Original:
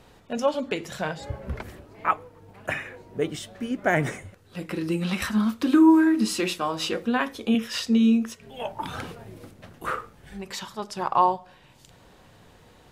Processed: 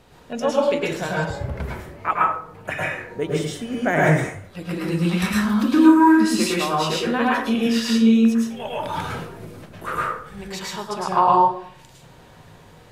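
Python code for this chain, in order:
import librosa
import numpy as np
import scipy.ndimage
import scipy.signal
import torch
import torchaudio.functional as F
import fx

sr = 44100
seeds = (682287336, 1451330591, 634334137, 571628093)

y = fx.rev_plate(x, sr, seeds[0], rt60_s=0.53, hf_ratio=0.6, predelay_ms=95, drr_db=-4.5)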